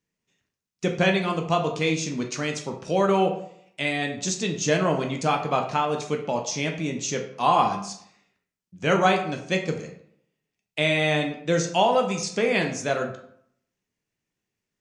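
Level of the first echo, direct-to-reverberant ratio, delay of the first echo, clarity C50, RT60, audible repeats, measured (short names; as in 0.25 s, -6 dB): none, 2.5 dB, none, 8.0 dB, 0.65 s, none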